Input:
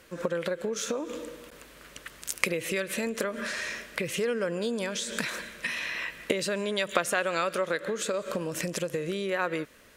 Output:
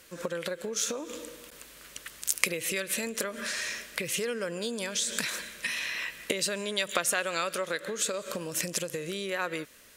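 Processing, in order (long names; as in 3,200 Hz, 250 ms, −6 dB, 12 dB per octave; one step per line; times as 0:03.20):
high-shelf EQ 3,000 Hz +11.5 dB
level −4.5 dB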